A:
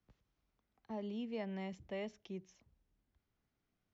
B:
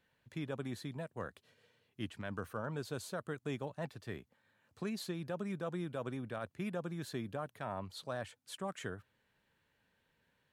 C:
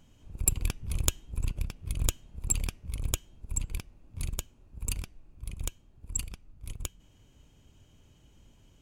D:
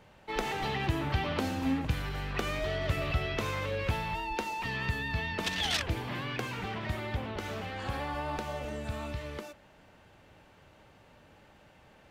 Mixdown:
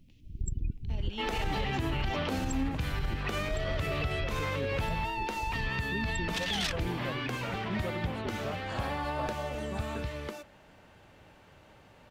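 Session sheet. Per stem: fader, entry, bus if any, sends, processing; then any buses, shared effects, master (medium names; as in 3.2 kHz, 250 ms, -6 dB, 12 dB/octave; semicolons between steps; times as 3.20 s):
-1.5 dB, 0.00 s, no send, resonant high shelf 1.9 kHz +12 dB, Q 3
+0.5 dB, 1.10 s, no send, spectral contrast expander 1.5:1
+1.0 dB, 0.00 s, no send, low-pass 2 kHz 6 dB/octave; loudest bins only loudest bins 16
+1.5 dB, 0.90 s, no send, none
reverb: none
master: peak limiter -22.5 dBFS, peak gain reduction 9.5 dB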